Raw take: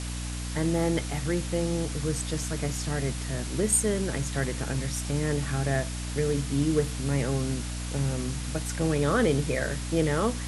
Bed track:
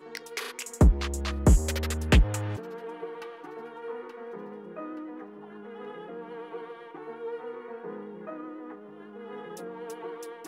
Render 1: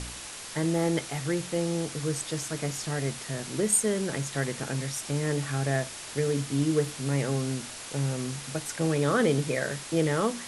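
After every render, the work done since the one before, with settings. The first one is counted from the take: de-hum 60 Hz, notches 5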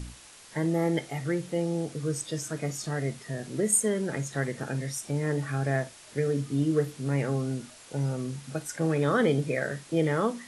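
noise print and reduce 10 dB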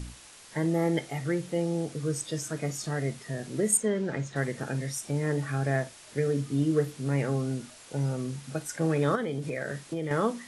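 3.77–4.36 air absorption 100 m; 9.15–10.11 compressor 5:1, threshold -28 dBFS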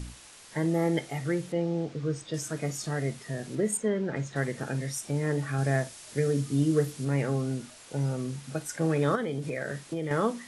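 1.52–2.34 air absorption 120 m; 3.55–4.16 LPF 3800 Hz 6 dB/oct; 5.58–7.05 tone controls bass +2 dB, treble +5 dB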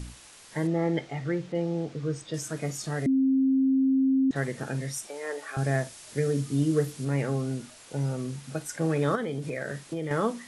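0.67–1.55 air absorption 110 m; 3.06–4.31 bleep 266 Hz -19.5 dBFS; 5.07–5.57 HPF 440 Hz 24 dB/oct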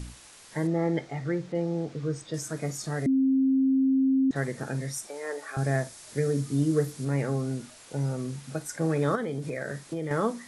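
dynamic EQ 2900 Hz, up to -6 dB, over -57 dBFS, Q 2.6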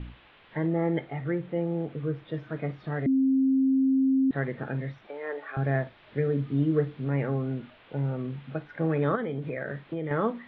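steep low-pass 3400 Hz 48 dB/oct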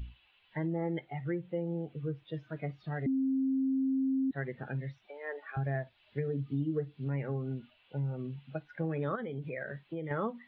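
per-bin expansion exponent 1.5; compressor 3:1, threshold -31 dBFS, peak gain reduction 8.5 dB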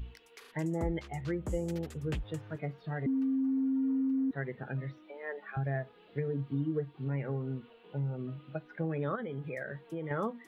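add bed track -18.5 dB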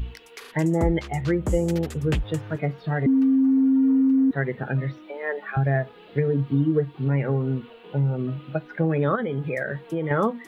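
gain +11.5 dB

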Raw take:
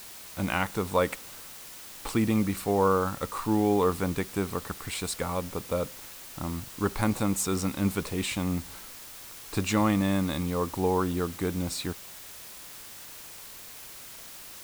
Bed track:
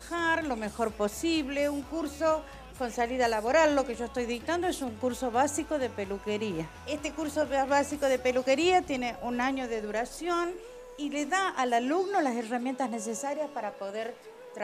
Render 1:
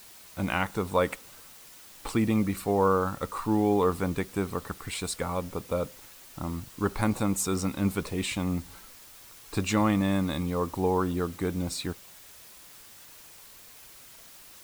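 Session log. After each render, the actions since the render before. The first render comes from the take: denoiser 6 dB, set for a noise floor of -45 dBFS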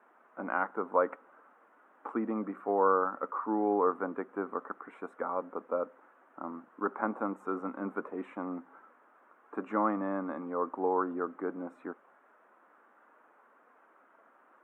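elliptic band-pass 240–1400 Hz, stop band 50 dB; tilt +2.5 dB/oct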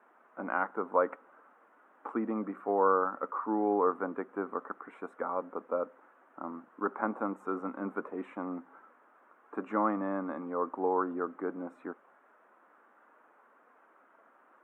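nothing audible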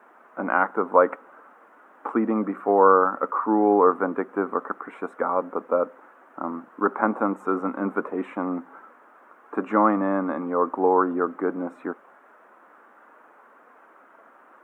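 gain +10 dB

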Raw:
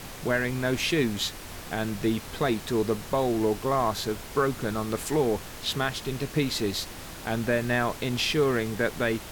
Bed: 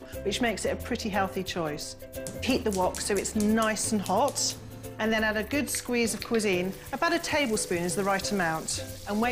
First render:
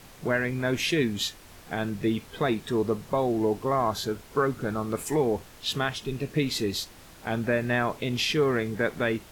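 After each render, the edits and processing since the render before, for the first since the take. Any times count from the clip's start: noise print and reduce 9 dB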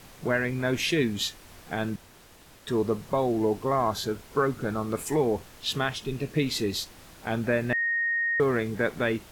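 1.96–2.67 room tone; 7.73–8.4 bleep 1860 Hz -23.5 dBFS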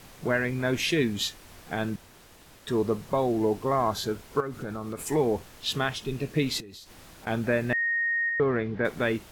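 4.4–5 compressor, threshold -30 dBFS; 6.6–7.27 compressor 10:1, threshold -42 dBFS; 8.29–8.85 air absorption 270 m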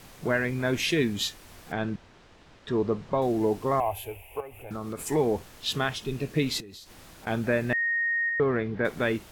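1.72–3.22 air absorption 130 m; 3.8–4.71 EQ curve 100 Hz 0 dB, 170 Hz -28 dB, 370 Hz -10 dB, 810 Hz +4 dB, 1400 Hz -22 dB, 2600 Hz +12 dB, 4100 Hz -23 dB, 6200 Hz -18 dB, 11000 Hz +5 dB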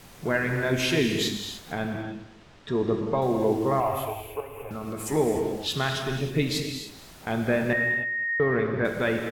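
feedback echo 0.21 s, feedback 17%, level -17 dB; non-linear reverb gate 0.33 s flat, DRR 3 dB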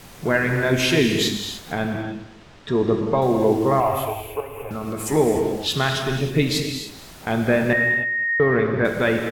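gain +5.5 dB

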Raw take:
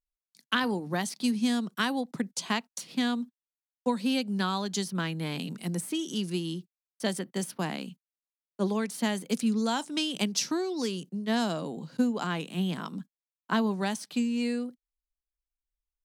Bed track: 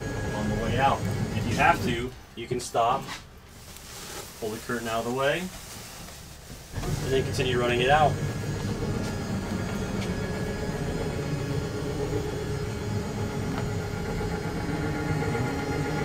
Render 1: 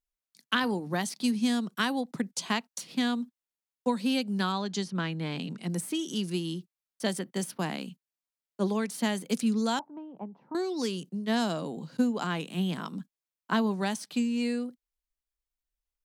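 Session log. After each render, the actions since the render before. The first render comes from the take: 4.52–5.7 air absorption 73 m; 9.79–10.55 ladder low-pass 980 Hz, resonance 65%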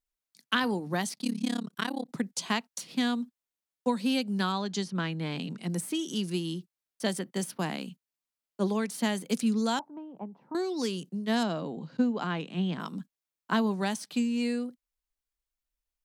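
1.15–2.1 AM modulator 34 Hz, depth 100%; 11.43–12.8 air absorption 130 m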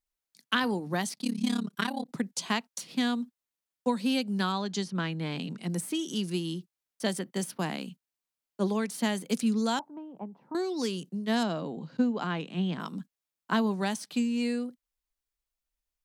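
1.38–2.03 comb 5 ms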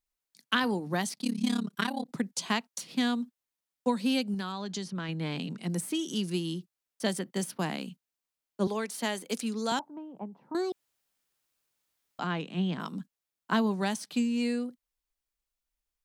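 4.34–5.09 compressor, threshold -31 dBFS; 8.67–9.72 HPF 310 Hz; 10.72–12.19 room tone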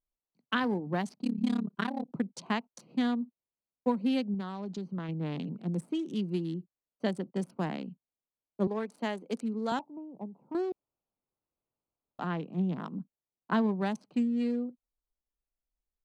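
Wiener smoothing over 25 samples; LPF 1700 Hz 6 dB/oct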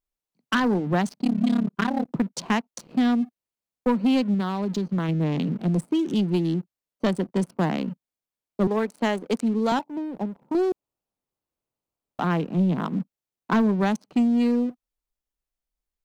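in parallel at 0 dB: compressor 4:1, threshold -39 dBFS, peak gain reduction 14.5 dB; on the sum: sample leveller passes 2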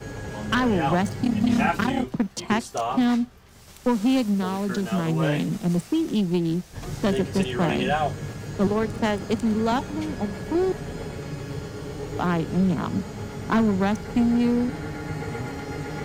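add bed track -3.5 dB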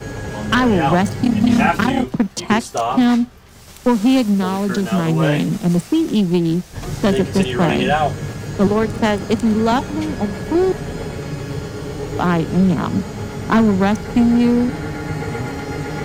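gain +7 dB

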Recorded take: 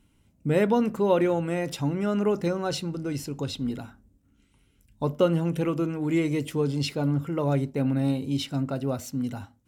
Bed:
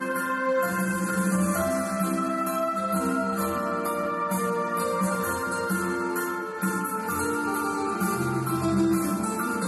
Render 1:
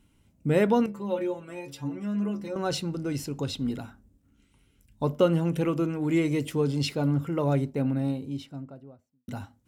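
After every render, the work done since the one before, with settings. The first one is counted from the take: 0.86–2.56 metallic resonator 66 Hz, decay 0.37 s, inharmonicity 0.008; 7.35–9.28 studio fade out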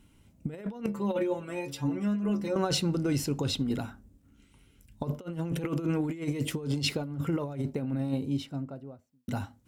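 negative-ratio compressor -29 dBFS, ratio -0.5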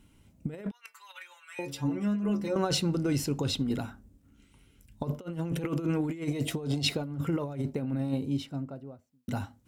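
0.71–1.59 HPF 1400 Hz 24 dB/oct; 6.31–6.96 small resonant body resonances 690/3800 Hz, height 14 dB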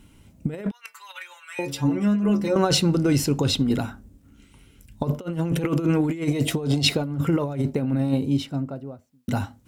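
gain +8 dB

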